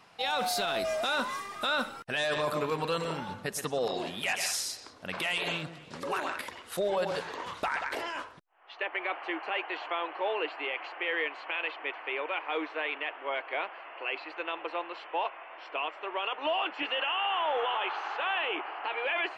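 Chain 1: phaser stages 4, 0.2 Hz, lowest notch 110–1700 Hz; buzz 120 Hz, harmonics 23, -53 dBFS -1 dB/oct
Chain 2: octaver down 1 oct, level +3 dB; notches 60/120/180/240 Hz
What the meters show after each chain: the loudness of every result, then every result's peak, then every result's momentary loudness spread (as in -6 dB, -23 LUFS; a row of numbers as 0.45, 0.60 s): -35.5, -32.0 LUFS; -20.5, -18.5 dBFS; 9, 7 LU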